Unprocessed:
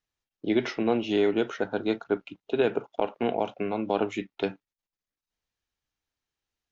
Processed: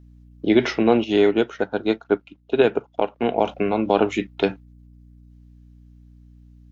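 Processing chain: hum 60 Hz, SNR 26 dB; 1.04–3.37 s: upward expansion 1.5:1, over -43 dBFS; trim +8 dB

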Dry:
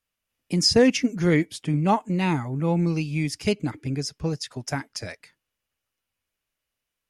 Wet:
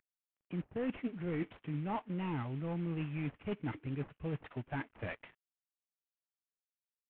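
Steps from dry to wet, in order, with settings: CVSD coder 16 kbps; reverse; compression 6:1, threshold -32 dBFS, peak gain reduction 17.5 dB; reverse; trim -3 dB

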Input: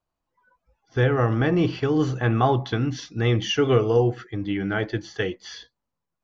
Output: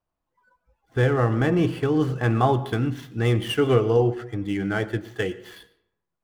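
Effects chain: median filter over 9 samples; on a send: reverberation RT60 0.75 s, pre-delay 89 ms, DRR 17 dB

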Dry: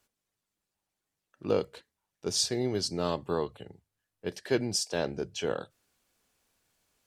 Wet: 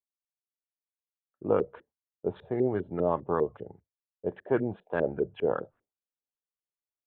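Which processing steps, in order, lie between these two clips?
expander -53 dBFS; resampled via 8 kHz; LFO low-pass saw up 5 Hz 380–1700 Hz

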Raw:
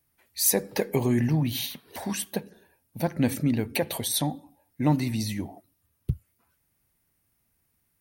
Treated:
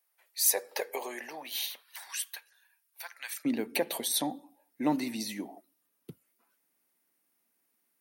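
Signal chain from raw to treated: high-pass 520 Hz 24 dB/octave, from 1.83 s 1.2 kHz, from 3.45 s 240 Hz; trim -2.5 dB

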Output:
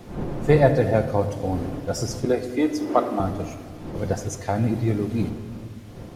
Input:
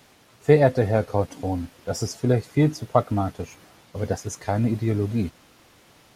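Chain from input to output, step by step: wind noise 330 Hz -35 dBFS; 2.25–3.20 s: steep high-pass 230 Hz 48 dB/octave; simulated room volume 2600 m³, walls mixed, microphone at 0.86 m

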